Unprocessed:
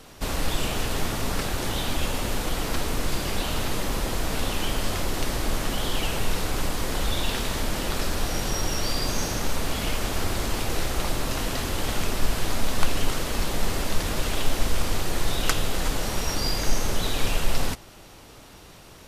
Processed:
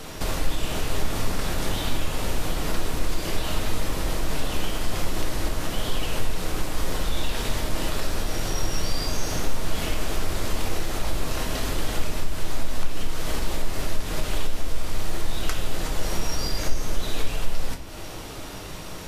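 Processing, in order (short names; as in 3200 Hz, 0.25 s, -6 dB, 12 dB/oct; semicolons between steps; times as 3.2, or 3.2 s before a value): compressor 6:1, threshold -34 dBFS, peak gain reduction 21 dB; shoebox room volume 86 m³, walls mixed, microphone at 0.53 m; gain +8 dB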